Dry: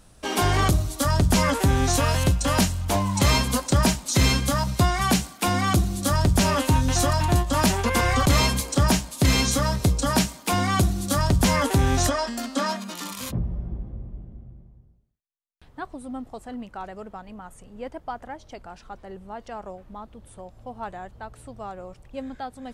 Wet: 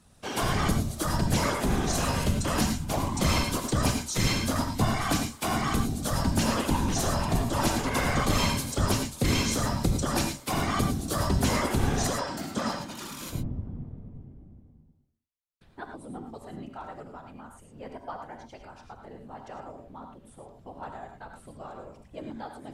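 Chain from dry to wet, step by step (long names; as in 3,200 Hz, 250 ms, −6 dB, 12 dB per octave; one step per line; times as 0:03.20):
random phases in short frames
reverb whose tail is shaped and stops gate 130 ms rising, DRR 4.5 dB
level −6.5 dB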